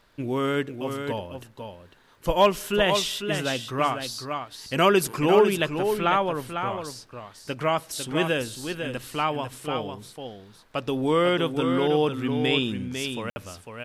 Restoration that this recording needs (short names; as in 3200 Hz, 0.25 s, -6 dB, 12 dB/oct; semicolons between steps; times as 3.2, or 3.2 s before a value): clip repair -8.5 dBFS; de-click; interpolate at 13.3, 60 ms; inverse comb 0.5 s -7 dB